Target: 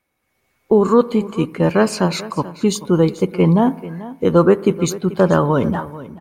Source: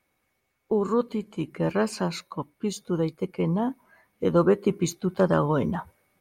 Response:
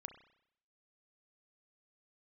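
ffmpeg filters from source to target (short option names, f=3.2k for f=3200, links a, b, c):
-filter_complex "[0:a]dynaudnorm=f=110:g=7:m=12.5dB,aecho=1:1:437:0.15,asplit=2[a][b];[1:a]atrim=start_sample=2205,asetrate=28665,aresample=44100[c];[b][c]afir=irnorm=-1:irlink=0,volume=-6dB[d];[a][d]amix=inputs=2:normalize=0,volume=-2.5dB"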